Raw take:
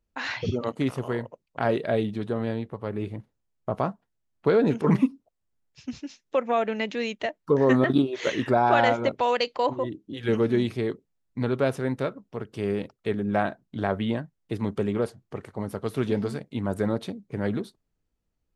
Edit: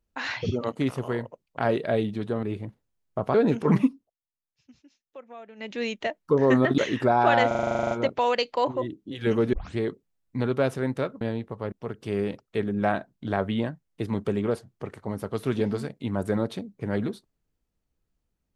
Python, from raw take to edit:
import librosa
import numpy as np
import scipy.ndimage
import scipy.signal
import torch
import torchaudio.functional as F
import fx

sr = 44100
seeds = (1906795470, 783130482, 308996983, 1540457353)

y = fx.edit(x, sr, fx.move(start_s=2.43, length_s=0.51, to_s=12.23),
    fx.cut(start_s=3.85, length_s=0.68),
    fx.fade_down_up(start_s=5.05, length_s=1.98, db=-19.5, fade_s=0.29),
    fx.cut(start_s=7.97, length_s=0.27),
    fx.stutter(start_s=8.93, slice_s=0.04, count=12),
    fx.tape_start(start_s=10.55, length_s=0.25), tone=tone)